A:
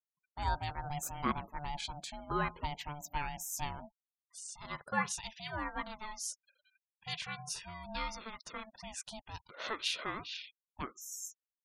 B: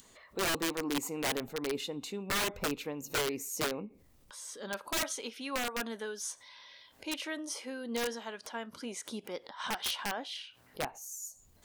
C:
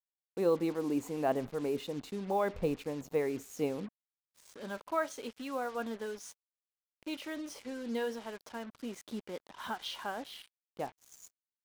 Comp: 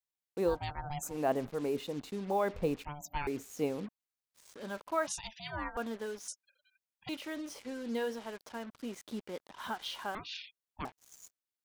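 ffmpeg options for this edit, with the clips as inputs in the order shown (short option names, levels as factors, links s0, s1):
-filter_complex "[0:a]asplit=5[s0][s1][s2][s3][s4];[2:a]asplit=6[s5][s6][s7][s8][s9][s10];[s5]atrim=end=0.61[s11];[s0]atrim=start=0.45:end=1.19[s12];[s6]atrim=start=1.03:end=2.852[s13];[s1]atrim=start=2.848:end=3.272[s14];[s7]atrim=start=3.268:end=5.072[s15];[s2]atrim=start=5.068:end=5.772[s16];[s8]atrim=start=5.768:end=6.282[s17];[s3]atrim=start=6.278:end=7.092[s18];[s9]atrim=start=7.088:end=10.152[s19];[s4]atrim=start=10.148:end=10.852[s20];[s10]atrim=start=10.848[s21];[s11][s12]acrossfade=d=0.16:c1=tri:c2=tri[s22];[s22][s13]acrossfade=d=0.16:c1=tri:c2=tri[s23];[s23][s14]acrossfade=d=0.004:c1=hsin:c2=hsin[s24];[s24][s15]acrossfade=d=0.004:c1=hsin:c2=hsin[s25];[s25][s16]acrossfade=d=0.004:c1=hsin:c2=hsin[s26];[s26][s17]acrossfade=d=0.004:c1=hsin:c2=hsin[s27];[s27][s18]acrossfade=d=0.004:c1=hsin:c2=hsin[s28];[s28][s19]acrossfade=d=0.004:c1=hsin:c2=hsin[s29];[s29][s20]acrossfade=d=0.004:c1=hsin:c2=hsin[s30];[s30][s21]acrossfade=d=0.004:c1=hsin:c2=hsin"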